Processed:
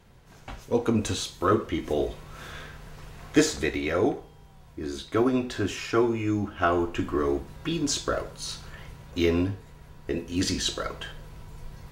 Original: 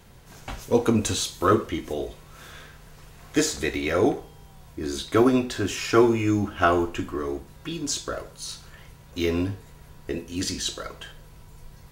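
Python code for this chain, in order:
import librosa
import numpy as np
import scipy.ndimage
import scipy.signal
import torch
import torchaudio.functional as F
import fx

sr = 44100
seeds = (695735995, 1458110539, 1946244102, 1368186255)

y = fx.high_shelf(x, sr, hz=5800.0, db=-8.5)
y = fx.rider(y, sr, range_db=5, speed_s=0.5)
y = F.gain(torch.from_numpy(y), -1.0).numpy()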